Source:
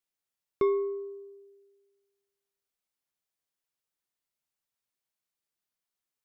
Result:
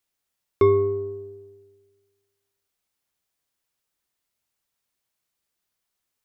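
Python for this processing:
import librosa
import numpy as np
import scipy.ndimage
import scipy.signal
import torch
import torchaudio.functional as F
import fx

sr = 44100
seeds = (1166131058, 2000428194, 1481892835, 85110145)

y = fx.octave_divider(x, sr, octaves=2, level_db=-3.0)
y = F.gain(torch.from_numpy(y), 8.0).numpy()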